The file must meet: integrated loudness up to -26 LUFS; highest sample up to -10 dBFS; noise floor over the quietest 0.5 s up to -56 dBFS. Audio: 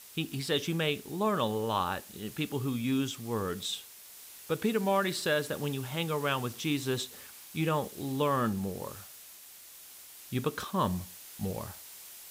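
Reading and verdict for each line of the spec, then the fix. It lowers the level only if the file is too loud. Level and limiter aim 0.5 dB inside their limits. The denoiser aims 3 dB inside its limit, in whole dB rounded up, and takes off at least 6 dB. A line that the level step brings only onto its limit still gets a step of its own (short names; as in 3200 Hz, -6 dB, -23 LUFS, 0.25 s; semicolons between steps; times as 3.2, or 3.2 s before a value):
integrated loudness -32.5 LUFS: OK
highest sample -15.5 dBFS: OK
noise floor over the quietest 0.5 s -51 dBFS: fail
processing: denoiser 8 dB, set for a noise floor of -51 dBFS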